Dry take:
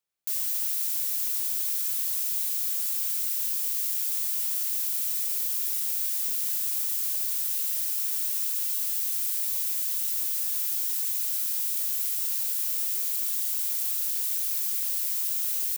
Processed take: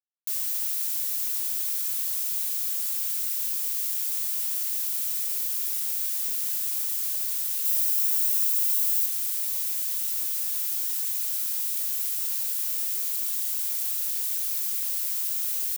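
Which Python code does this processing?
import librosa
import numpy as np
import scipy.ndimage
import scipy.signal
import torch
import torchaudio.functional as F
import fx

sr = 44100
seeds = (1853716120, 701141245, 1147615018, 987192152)

y = fx.high_shelf(x, sr, hz=9500.0, db=5.5, at=(7.65, 9.06))
y = fx.quant_dither(y, sr, seeds[0], bits=8, dither='none')
y = fx.low_shelf(y, sr, hz=180.0, db=-10.0, at=(12.69, 13.97))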